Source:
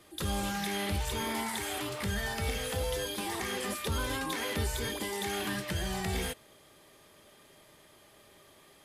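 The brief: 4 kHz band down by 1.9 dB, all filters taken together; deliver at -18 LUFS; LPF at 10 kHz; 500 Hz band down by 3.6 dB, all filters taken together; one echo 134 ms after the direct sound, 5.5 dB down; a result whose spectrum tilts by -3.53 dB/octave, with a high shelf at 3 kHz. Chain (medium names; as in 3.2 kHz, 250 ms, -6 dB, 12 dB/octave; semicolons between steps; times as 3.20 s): low-pass 10 kHz; peaking EQ 500 Hz -4.5 dB; treble shelf 3 kHz +3.5 dB; peaking EQ 4 kHz -5 dB; delay 134 ms -5.5 dB; trim +15.5 dB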